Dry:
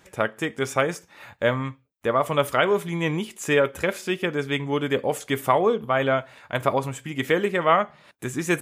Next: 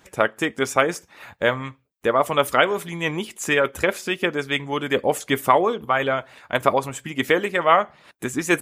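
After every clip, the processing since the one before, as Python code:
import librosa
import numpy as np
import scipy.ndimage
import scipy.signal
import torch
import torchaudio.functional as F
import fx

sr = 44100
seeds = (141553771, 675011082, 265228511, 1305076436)

y = fx.hpss(x, sr, part='harmonic', gain_db=-9)
y = y * 10.0 ** (5.0 / 20.0)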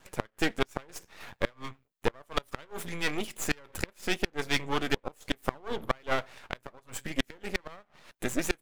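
y = np.maximum(x, 0.0)
y = fx.gate_flip(y, sr, shuts_db=-10.0, range_db=-30)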